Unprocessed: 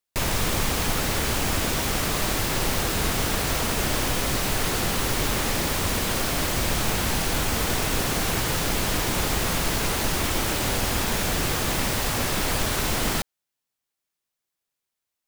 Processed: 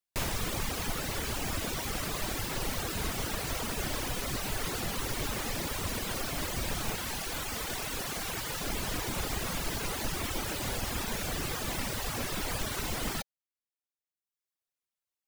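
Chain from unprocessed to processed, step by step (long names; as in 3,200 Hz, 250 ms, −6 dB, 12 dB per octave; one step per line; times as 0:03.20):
reverb reduction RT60 1.1 s
0:06.95–0:08.61: low-shelf EQ 430 Hz −6 dB
level −6.5 dB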